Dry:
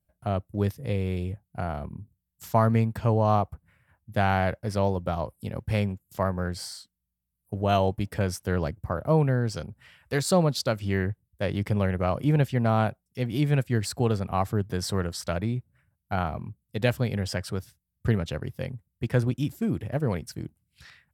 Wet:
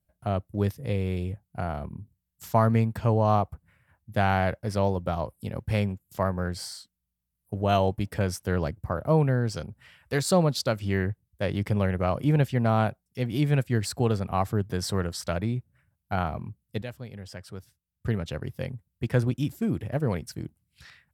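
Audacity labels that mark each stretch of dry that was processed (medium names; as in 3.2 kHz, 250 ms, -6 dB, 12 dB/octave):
16.820000	18.520000	fade in quadratic, from -14 dB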